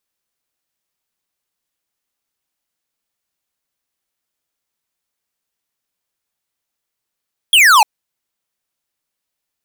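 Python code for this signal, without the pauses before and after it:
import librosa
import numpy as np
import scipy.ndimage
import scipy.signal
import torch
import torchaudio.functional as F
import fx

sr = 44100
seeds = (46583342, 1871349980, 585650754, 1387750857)

y = fx.laser_zap(sr, level_db=-8.0, start_hz=3400.0, end_hz=800.0, length_s=0.3, wave='square')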